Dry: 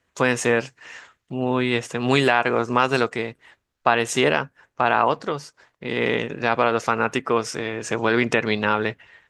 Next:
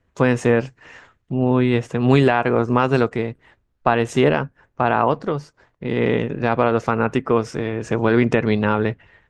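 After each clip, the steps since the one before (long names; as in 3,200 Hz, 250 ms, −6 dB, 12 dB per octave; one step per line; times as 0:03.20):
spectral tilt −3 dB per octave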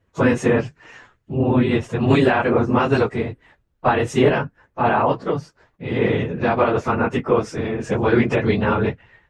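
random phases in long frames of 50 ms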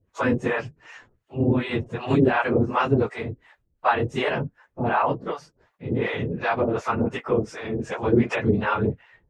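two-band tremolo in antiphase 2.7 Hz, depth 100%, crossover 570 Hz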